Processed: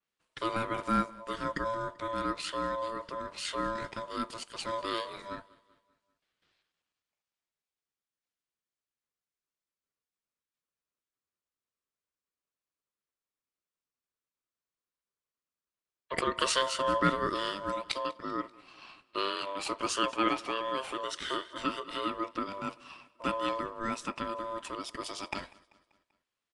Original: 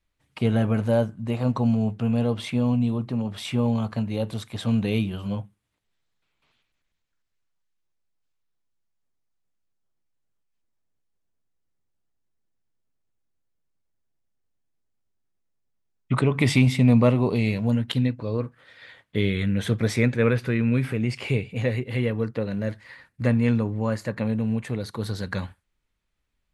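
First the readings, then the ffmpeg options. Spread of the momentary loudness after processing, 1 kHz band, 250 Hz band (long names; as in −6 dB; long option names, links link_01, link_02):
11 LU, +5.0 dB, −15.0 dB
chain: -af "highpass=320,aeval=exprs='val(0)*sin(2*PI*790*n/s)':channel_layout=same,aecho=1:1:194|388|582|776:0.0708|0.0375|0.0199|0.0105,aresample=22050,aresample=44100,adynamicequalizer=threshold=0.00398:dfrequency=3800:dqfactor=0.7:tfrequency=3800:tqfactor=0.7:attack=5:release=100:ratio=0.375:range=3:mode=boostabove:tftype=highshelf,volume=-2dB"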